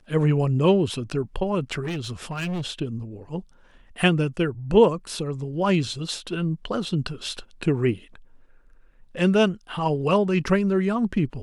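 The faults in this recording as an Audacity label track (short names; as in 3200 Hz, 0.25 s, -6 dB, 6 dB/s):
1.830000	2.660000	clipped -25.5 dBFS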